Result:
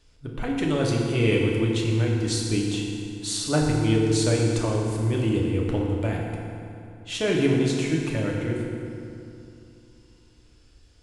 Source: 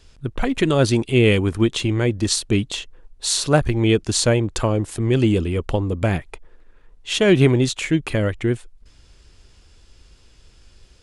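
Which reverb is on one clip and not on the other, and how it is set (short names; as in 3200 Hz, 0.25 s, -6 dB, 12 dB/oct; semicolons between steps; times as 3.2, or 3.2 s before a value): FDN reverb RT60 2.7 s, low-frequency decay 1.2×, high-frequency decay 0.7×, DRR -2 dB; gain -10 dB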